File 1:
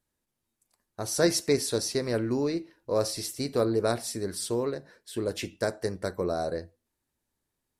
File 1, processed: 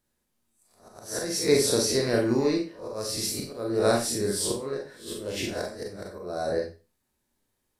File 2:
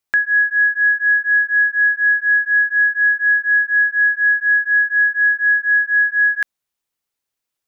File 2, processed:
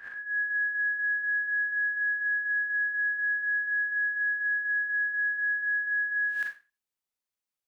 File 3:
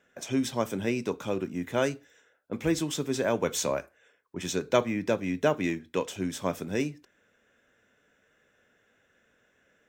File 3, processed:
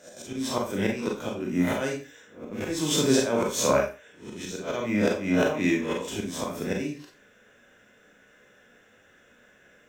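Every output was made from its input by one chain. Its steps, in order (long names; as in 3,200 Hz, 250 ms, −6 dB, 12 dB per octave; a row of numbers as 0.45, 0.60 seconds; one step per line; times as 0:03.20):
peak hold with a rise ahead of every peak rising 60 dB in 0.40 s
volume swells 323 ms
four-comb reverb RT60 0.31 s, combs from 30 ms, DRR 0.5 dB
loudness normalisation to −27 LKFS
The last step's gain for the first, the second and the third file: +1.0, −14.0, +5.5 decibels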